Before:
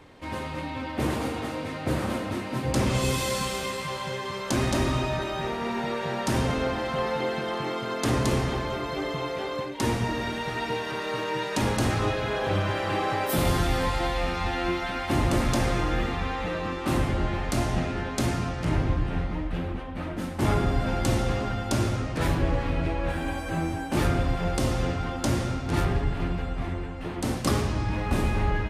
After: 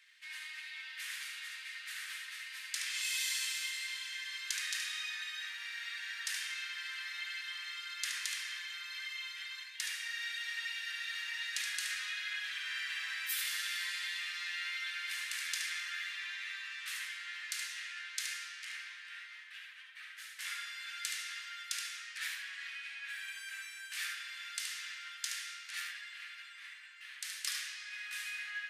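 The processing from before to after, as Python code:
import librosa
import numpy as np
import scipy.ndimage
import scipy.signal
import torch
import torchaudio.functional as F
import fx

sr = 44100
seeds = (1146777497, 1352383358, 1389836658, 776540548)

y = scipy.signal.sosfilt(scipy.signal.ellip(4, 1.0, 70, 1700.0, 'highpass', fs=sr, output='sos'), x)
y = y + 10.0 ** (-6.0 / 20.0) * np.pad(y, (int(73 * sr / 1000.0), 0))[:len(y)]
y = y * 10.0 ** (-3.5 / 20.0)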